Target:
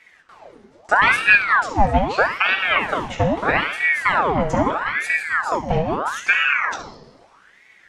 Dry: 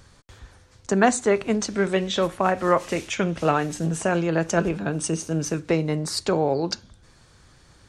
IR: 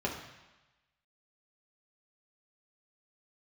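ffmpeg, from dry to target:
-filter_complex "[1:a]atrim=start_sample=2205[link_01];[0:a][link_01]afir=irnorm=-1:irlink=0,aeval=exprs='val(0)*sin(2*PI*1200*n/s+1200*0.75/0.78*sin(2*PI*0.78*n/s))':channel_layout=same,volume=-3.5dB"

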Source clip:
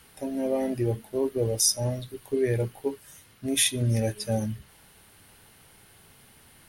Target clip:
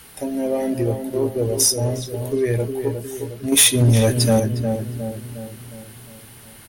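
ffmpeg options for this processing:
ffmpeg -i in.wav -filter_complex "[0:a]asplit=2[link_01][link_02];[link_02]acompressor=threshold=-35dB:ratio=6,volume=-1dB[link_03];[link_01][link_03]amix=inputs=2:normalize=0,highshelf=frequency=7300:gain=5,asettb=1/sr,asplit=3[link_04][link_05][link_06];[link_04]atrim=end=3.524[link_07];[link_05]atrim=start=3.52:end=4.4,asetpts=PTS-STARTPTS,afade=type=in:duration=0.004:curve=qsin,afade=type=out:start_time=0.876:duration=0.004:curve=qsin,acontrast=85[link_08];[link_06]atrim=start=4.396[link_09];[link_07][link_08]acrossfade=duration=0.004:curve1=hsin:curve2=qsin[link_10];[link_10][link_09]acrossfade=duration=0.004:curve1=qsin:curve2=hsin,asplit=2[link_11][link_12];[link_12]adelay=359,lowpass=frequency=1200:poles=1,volume=-6.5dB,asplit=2[link_13][link_14];[link_14]adelay=359,lowpass=frequency=1200:poles=1,volume=0.54,asplit=2[link_15][link_16];[link_16]adelay=359,lowpass=frequency=1200:poles=1,volume=0.54,asplit=2[link_17][link_18];[link_18]adelay=359,lowpass=frequency=1200:poles=1,volume=0.54,asplit=2[link_19][link_20];[link_20]adelay=359,lowpass=frequency=1200:poles=1,volume=0.54,asplit=2[link_21][link_22];[link_22]adelay=359,lowpass=frequency=1200:poles=1,volume=0.54,asplit=2[link_23][link_24];[link_24]adelay=359,lowpass=frequency=1200:poles=1,volume=0.54[link_25];[link_13][link_15][link_17][link_19][link_21][link_23][link_25]amix=inputs=7:normalize=0[link_26];[link_11][link_26]amix=inputs=2:normalize=0,asoftclip=type=tanh:threshold=-10dB,volume=3dB" out.wav

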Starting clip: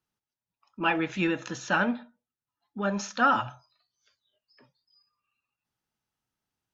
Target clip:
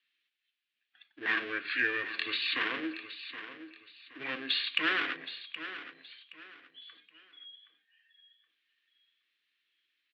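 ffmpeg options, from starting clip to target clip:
ffmpeg -i in.wav -filter_complex "[0:a]acrossover=split=1100[link_01][link_02];[link_01]aeval=exprs='abs(val(0))':channel_layout=same[link_03];[link_02]acompressor=threshold=-38dB:ratio=6[link_04];[link_03][link_04]amix=inputs=2:normalize=0,highpass=460,equalizer=frequency=480:width_type=q:width=4:gain=8,equalizer=frequency=900:width_type=q:width=4:gain=-8,equalizer=frequency=1300:width_type=q:width=4:gain=-8,equalizer=frequency=2000:width_type=q:width=4:gain=-5,equalizer=frequency=3100:width_type=q:width=4:gain=-4,lowpass=frequency=4700:width=0.5412,lowpass=frequency=4700:width=1.3066,aexciter=amount=8.4:drive=8.2:freq=2100,aecho=1:1:513|1026|1539:0.251|0.0728|0.0211,asetrate=29326,aresample=44100,volume=-6dB" out.wav

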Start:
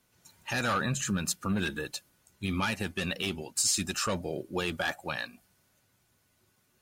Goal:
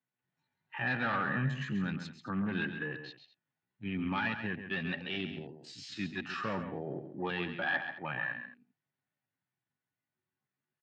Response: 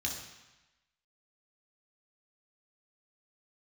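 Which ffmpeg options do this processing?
-af "afwtdn=0.00891,equalizer=frequency=820:width_type=o:width=0.31:gain=5.5,atempo=0.63,highpass=frequency=110:width=0.5412,highpass=frequency=110:width=1.3066,equalizer=frequency=140:width_type=q:width=4:gain=7,equalizer=frequency=270:width_type=q:width=4:gain=4,equalizer=frequency=520:width_type=q:width=4:gain=-3,equalizer=frequency=1800:width_type=q:width=4:gain=8,lowpass=frequency=3600:width=0.5412,lowpass=frequency=3600:width=1.3066,aecho=1:1:135|218:0.355|0.133,volume=-5.5dB"

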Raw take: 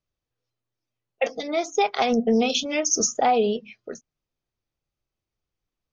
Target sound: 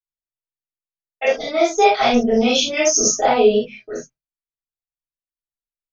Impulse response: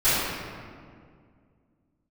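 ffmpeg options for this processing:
-filter_complex "[0:a]agate=range=-33dB:threshold=-44dB:ratio=3:detection=peak[link_01];[1:a]atrim=start_sample=2205,atrim=end_sample=3969[link_02];[link_01][link_02]afir=irnorm=-1:irlink=0,volume=-7.5dB"

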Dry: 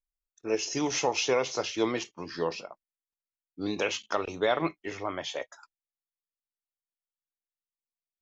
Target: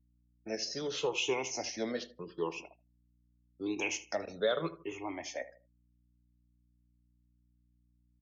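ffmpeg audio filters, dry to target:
ffmpeg -i in.wav -filter_complex "[0:a]afftfilt=real='re*pow(10,15/40*sin(2*PI*(0.67*log(max(b,1)*sr/1024/100)/log(2)-(-0.82)*(pts-256)/sr)))':imag='im*pow(10,15/40*sin(2*PI*(0.67*log(max(b,1)*sr/1024/100)/log(2)-(-0.82)*(pts-256)/sr)))':win_size=1024:overlap=0.75,agate=range=-43dB:threshold=-39dB:ratio=16:detection=peak,asplit=2[link_01][link_02];[link_02]adelay=78,lowpass=frequency=4900:poles=1,volume=-14.5dB,asplit=2[link_03][link_04];[link_04]adelay=78,lowpass=frequency=4900:poles=1,volume=0.36,asplit=2[link_05][link_06];[link_06]adelay=78,lowpass=frequency=4900:poles=1,volume=0.36[link_07];[link_01][link_03][link_05][link_07]amix=inputs=4:normalize=0,acrossover=split=140|500|3100[link_08][link_09][link_10][link_11];[link_08]acompressor=threshold=-55dB:ratio=8[link_12];[link_12][link_09][link_10][link_11]amix=inputs=4:normalize=0,afftdn=noise_reduction=26:noise_floor=-49,equalizer=frequency=1200:width_type=o:width=1.1:gain=-6.5,aeval=exprs='val(0)+0.000708*(sin(2*PI*60*n/s)+sin(2*PI*2*60*n/s)/2+sin(2*PI*3*60*n/s)/3+sin(2*PI*4*60*n/s)/4+sin(2*PI*5*60*n/s)/5)':channel_layout=same,volume=-6.5dB" out.wav

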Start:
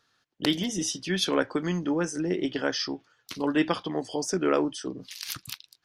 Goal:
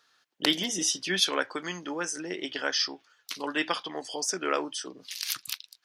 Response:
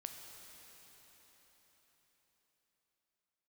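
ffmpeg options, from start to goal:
-af "asetnsamples=nb_out_samples=441:pad=0,asendcmd='1.2 highpass f 1400',highpass=frequency=660:poles=1,volume=4dB"

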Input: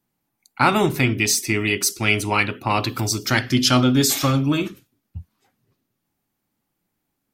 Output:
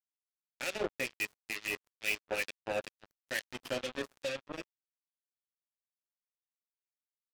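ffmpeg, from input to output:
ffmpeg -i in.wav -filter_complex "[0:a]asplit=3[link_01][link_02][link_03];[link_01]bandpass=frequency=530:width_type=q:width=8,volume=0dB[link_04];[link_02]bandpass=frequency=1840:width_type=q:width=8,volume=-6dB[link_05];[link_03]bandpass=frequency=2480:width_type=q:width=8,volume=-9dB[link_06];[link_04][link_05][link_06]amix=inputs=3:normalize=0,acrusher=bits=4:mix=0:aa=0.5,acrossover=split=1900[link_07][link_08];[link_07]aeval=exprs='val(0)*(1-0.7/2+0.7/2*cos(2*PI*2.2*n/s))':channel_layout=same[link_09];[link_08]aeval=exprs='val(0)*(1-0.7/2-0.7/2*cos(2*PI*2.2*n/s))':channel_layout=same[link_10];[link_09][link_10]amix=inputs=2:normalize=0" out.wav

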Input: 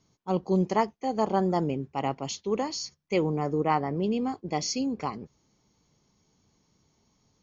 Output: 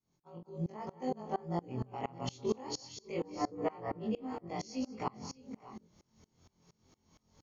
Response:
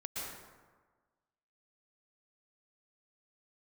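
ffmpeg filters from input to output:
-filter_complex "[0:a]afftfilt=real='re':imag='-im':win_size=2048:overlap=0.75,acompressor=threshold=-38dB:ratio=6,bandreject=frequency=60:width_type=h:width=6,bandreject=frequency=120:width_type=h:width=6,bandreject=frequency=180:width_type=h:width=6,bandreject=frequency=240:width_type=h:width=6,bandreject=frequency=300:width_type=h:width=6,bandreject=frequency=360:width_type=h:width=6,asplit=2[link_01][link_02];[link_02]aecho=0:1:41|179|200|534|603|621:0.106|0.141|0.15|0.1|0.211|0.119[link_03];[link_01][link_03]amix=inputs=2:normalize=0,adynamicequalizer=threshold=0.00112:dfrequency=120:dqfactor=2.3:tfrequency=120:tqfactor=2.3:attack=5:release=100:ratio=0.375:range=2:mode=boostabove:tftype=bell,alimiter=level_in=9.5dB:limit=-24dB:level=0:latency=1:release=402,volume=-9.5dB,dynaudnorm=framelen=370:gausssize=3:maxgain=11dB,highshelf=frequency=2300:gain=-4,aeval=exprs='val(0)*pow(10,-26*if(lt(mod(-4.3*n/s,1),2*abs(-4.3)/1000),1-mod(-4.3*n/s,1)/(2*abs(-4.3)/1000),(mod(-4.3*n/s,1)-2*abs(-4.3)/1000)/(1-2*abs(-4.3)/1000))/20)':channel_layout=same,volume=3dB"

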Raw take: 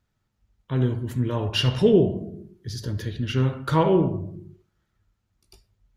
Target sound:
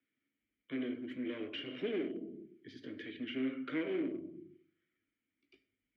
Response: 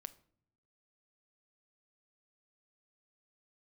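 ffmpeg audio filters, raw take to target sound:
-filter_complex "[0:a]aeval=exprs='clip(val(0),-1,0.0596)':channel_layout=same,asplit=2[link_01][link_02];[1:a]atrim=start_sample=2205[link_03];[link_02][link_03]afir=irnorm=-1:irlink=0,volume=8.5dB[link_04];[link_01][link_04]amix=inputs=2:normalize=0,acrossover=split=230|1200[link_05][link_06][link_07];[link_05]acompressor=threshold=-28dB:ratio=4[link_08];[link_06]acompressor=threshold=-17dB:ratio=4[link_09];[link_07]acompressor=threshold=-30dB:ratio=4[link_10];[link_08][link_09][link_10]amix=inputs=3:normalize=0,asplit=3[link_11][link_12][link_13];[link_11]bandpass=frequency=270:width_type=q:width=8,volume=0dB[link_14];[link_12]bandpass=frequency=2290:width_type=q:width=8,volume=-6dB[link_15];[link_13]bandpass=frequency=3010:width_type=q:width=8,volume=-9dB[link_16];[link_14][link_15][link_16]amix=inputs=3:normalize=0,acrossover=split=390 2600:gain=0.141 1 0.1[link_17][link_18][link_19];[link_17][link_18][link_19]amix=inputs=3:normalize=0,volume=5dB"

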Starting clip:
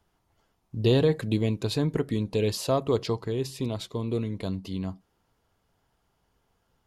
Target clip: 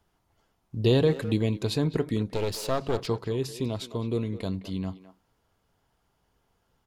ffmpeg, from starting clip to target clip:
ffmpeg -i in.wav -filter_complex "[0:a]asettb=1/sr,asplit=3[link_01][link_02][link_03];[link_01]atrim=end=2.334[link_04];[link_02]atrim=start=2.33:end=3.07,asetpts=PTS-STARTPTS,afade=type=in:duration=0.004:curve=qsin,afade=type=out:start_time=0.736:duration=0.004:curve=qsin,aeval=exprs='clip(val(0),-1,0.0141)':channel_layout=same[link_05];[link_03]atrim=start=3.066[link_06];[link_04][link_05]acrossfade=duration=0.004:curve1=hsin:curve2=qsin[link_07];[link_07][link_06]acrossfade=duration=0.004:curve1=qsin:curve2=hsin,asplit=2[link_08][link_09];[link_09]adelay=210,highpass=300,lowpass=3400,asoftclip=type=hard:threshold=-20dB,volume=-13dB[link_10];[link_08][link_10]amix=inputs=2:normalize=0" out.wav

